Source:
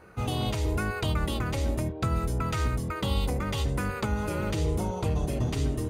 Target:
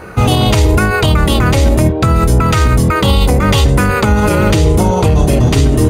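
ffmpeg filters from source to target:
-af "alimiter=level_in=13.3:limit=0.891:release=50:level=0:latency=1,volume=0.891"

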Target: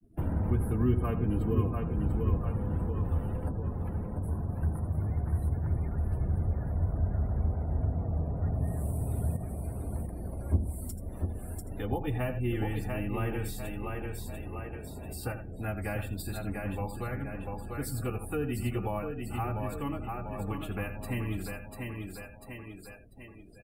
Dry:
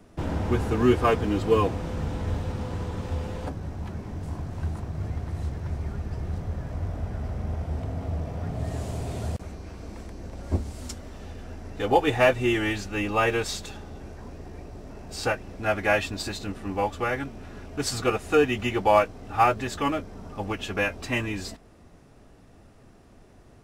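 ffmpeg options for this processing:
-filter_complex "[0:a]asplit=2[s0][s1];[s1]aecho=0:1:82:0.282[s2];[s0][s2]amix=inputs=2:normalize=0,aexciter=amount=12.5:drive=2.9:freq=9000,agate=range=0.0224:threshold=0.00447:ratio=3:detection=peak,asplit=2[s3][s4];[s4]aecho=0:1:693|1386|2079|2772|3465:0.473|0.185|0.072|0.0281|0.0109[s5];[s3][s5]amix=inputs=2:normalize=0,acrossover=split=220[s6][s7];[s7]acompressor=threshold=0.00708:ratio=2.5[s8];[s6][s8]amix=inputs=2:normalize=0,afftdn=nr=27:nf=-50,adynamicequalizer=threshold=0.00126:dfrequency=3300:dqfactor=0.7:tfrequency=3300:tqfactor=0.7:attack=5:release=100:ratio=0.375:range=2:mode=cutabove:tftype=highshelf"

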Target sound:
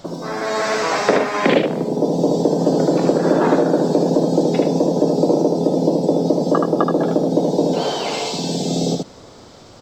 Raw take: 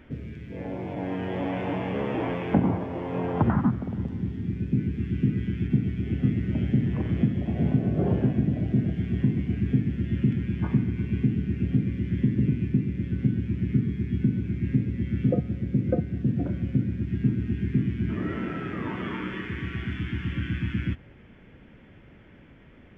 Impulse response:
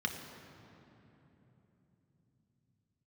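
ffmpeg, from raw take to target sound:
-af "highshelf=f=3000:g=8,aecho=1:1:179:0.668,asetrate=103194,aresample=44100,volume=2.24"

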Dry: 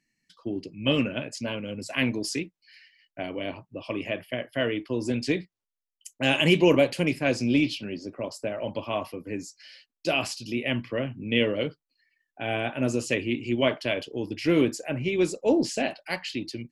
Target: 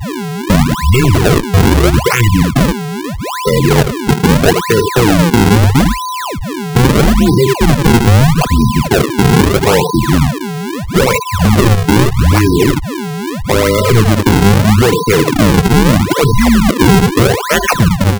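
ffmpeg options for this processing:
-filter_complex "[0:a]asplit=2[s0][s1];[s1]asetrate=22050,aresample=44100,atempo=2,volume=0.282[s2];[s0][s2]amix=inputs=2:normalize=0,asplit=2[s3][s4];[s4]aecho=0:1:72:0.266[s5];[s3][s5]amix=inputs=2:normalize=0,adynamicequalizer=threshold=0.00501:dfrequency=2400:dqfactor=6.5:tfrequency=2400:tqfactor=6.5:attack=5:release=100:ratio=0.375:range=2:mode=cutabove:tftype=bell,acompressor=threshold=0.0447:ratio=12,highpass=f=160:t=q:w=0.5412,highpass=f=160:t=q:w=1.307,lowpass=f=3400:t=q:w=0.5176,lowpass=f=3400:t=q:w=0.7071,lowpass=f=3400:t=q:w=1.932,afreqshift=-130,aeval=exprs='val(0)+0.00501*sin(2*PI*1100*n/s)':c=same,afftfilt=real='re*gte(hypot(re,im),0.0355)':imag='im*gte(hypot(re,im),0.0355)':win_size=1024:overlap=0.75,asetrate=40517,aresample=44100,acrusher=samples=42:mix=1:aa=0.000001:lfo=1:lforange=67.2:lforate=0.78,alimiter=level_in=33.5:limit=0.891:release=50:level=0:latency=1,volume=0.891"

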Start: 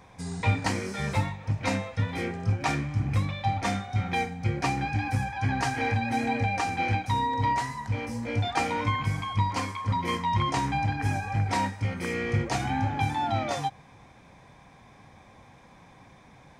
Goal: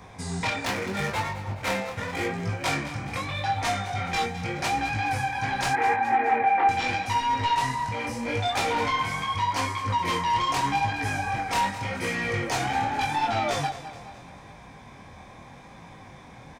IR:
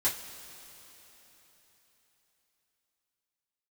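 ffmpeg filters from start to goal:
-filter_complex "[0:a]acrossover=split=410|1200[s0][s1][s2];[s0]acompressor=threshold=0.0141:ratio=6[s3];[s3][s1][s2]amix=inputs=3:normalize=0,aeval=exprs='0.282*(cos(1*acos(clip(val(0)/0.282,-1,1)))-cos(1*PI/2))+0.0794*(cos(3*acos(clip(val(0)/0.282,-1,1)))-cos(3*PI/2))+0.126*(cos(7*acos(clip(val(0)/0.282,-1,1)))-cos(7*PI/2))':c=same,asettb=1/sr,asplit=3[s4][s5][s6];[s4]atrim=end=0.654[s7];[s5]atrim=start=0.65:end=2.27,asetpts=PTS-STARTPTS,afade=t=in:d=0.004:c=qsin,afade=t=out:st=1.616:d=0.004:c=qsin,adynamicsmooth=sensitivity=4.5:basefreq=620[s8];[s6]atrim=start=2.266[s9];[s7][s8]acrossfade=d=0.004:c1=hsin:c2=qsin[s10];[s10][s9]acrossfade=d=0.004:c1=qsin:c2=hsin,asettb=1/sr,asplit=3[s11][s12][s13];[s11]atrim=end=5.734[s14];[s12]atrim=start=5.73:end=6.69,asetpts=PTS-STARTPTS,afade=t=in:d=0.004:c=qsin,afade=t=out:st=0.956:d=0.004:c=qsin,highpass=250,equalizer=f=260:t=q:w=4:g=-4,equalizer=f=390:t=q:w=4:g=10,equalizer=f=570:t=q:w=4:g=-6,equalizer=f=830:t=q:w=4:g=8,equalizer=f=1900:t=q:w=4:g=5,lowpass=f=2200:w=0.5412,lowpass=f=2200:w=1.3066[s15];[s13]atrim=start=6.686[s16];[s14][s15]acrossfade=d=0.004:c1=hsin:c2=qsin[s17];[s17][s16]acrossfade=d=0.004:c1=qsin:c2=hsin,asplit=2[s18][s19];[s19]aecho=0:1:211|422|633|844|1055:0.2|0.104|0.054|0.0281|0.0146[s20];[s18][s20]amix=inputs=2:normalize=0,flanger=delay=18:depth=7.3:speed=0.82"

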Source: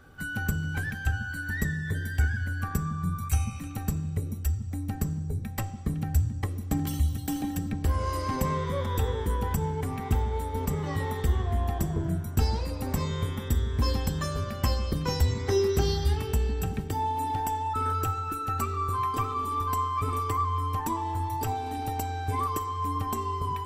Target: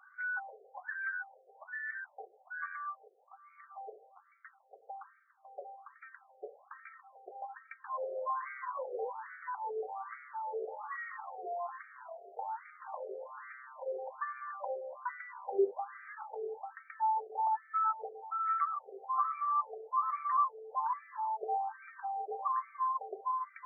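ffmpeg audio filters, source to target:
-filter_complex "[0:a]asettb=1/sr,asplit=3[s0][s1][s2];[s0]atrim=end=3.074[s3];[s1]atrim=start=3.07:end=3.78,asetpts=PTS-STARTPTS,afade=t=in:d=0.004:c=qsin,afade=t=out:st=0.706:d=0.004:c=qsin,acompressor=threshold=0.0224:ratio=8[s4];[s2]atrim=start=3.776[s5];[s3][s4]acrossfade=d=0.004:c1=hsin:c2=qsin[s6];[s6][s5]acrossfade=d=0.004:c1=qsin:c2=hsin,afftfilt=real='re*between(b*sr/1024,540*pow(1700/540,0.5+0.5*sin(2*PI*1.2*pts/sr))/1.41,540*pow(1700/540,0.5+0.5*sin(2*PI*1.2*pts/sr))*1.41)':imag='im*between(b*sr/1024,540*pow(1700/540,0.5+0.5*sin(2*PI*1.2*pts/sr))/1.41,540*pow(1700/540,0.5+0.5*sin(2*PI*1.2*pts/sr))*1.41)':win_size=1024:overlap=0.75"

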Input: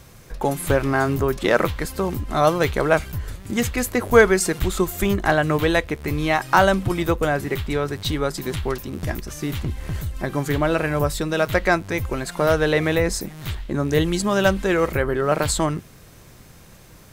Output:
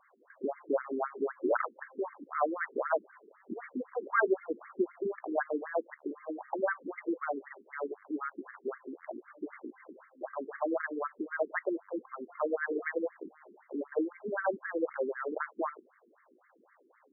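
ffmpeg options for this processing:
-af "highpass=120,lowpass=2400,aemphasis=mode=production:type=75kf,afftfilt=real='re*between(b*sr/1024,300*pow(1600/300,0.5+0.5*sin(2*PI*3.9*pts/sr))/1.41,300*pow(1600/300,0.5+0.5*sin(2*PI*3.9*pts/sr))*1.41)':imag='im*between(b*sr/1024,300*pow(1600/300,0.5+0.5*sin(2*PI*3.9*pts/sr))/1.41,300*pow(1600/300,0.5+0.5*sin(2*PI*3.9*pts/sr))*1.41)':win_size=1024:overlap=0.75,volume=0.422"

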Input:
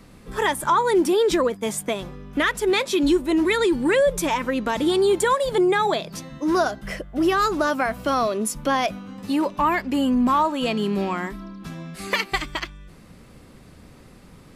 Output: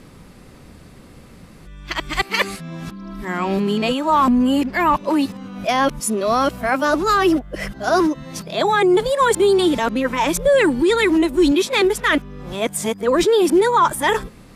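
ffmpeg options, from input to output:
-af "areverse,volume=1.58"

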